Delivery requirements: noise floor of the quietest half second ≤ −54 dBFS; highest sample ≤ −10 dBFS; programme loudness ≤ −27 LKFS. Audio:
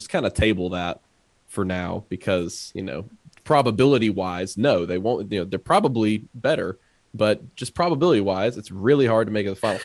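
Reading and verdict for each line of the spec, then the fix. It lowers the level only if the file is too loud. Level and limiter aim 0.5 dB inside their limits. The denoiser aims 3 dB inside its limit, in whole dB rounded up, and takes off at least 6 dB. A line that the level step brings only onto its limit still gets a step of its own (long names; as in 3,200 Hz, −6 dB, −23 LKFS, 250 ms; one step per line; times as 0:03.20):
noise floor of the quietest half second −63 dBFS: in spec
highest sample −5.0 dBFS: out of spec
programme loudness −22.5 LKFS: out of spec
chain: level −5 dB
brickwall limiter −10.5 dBFS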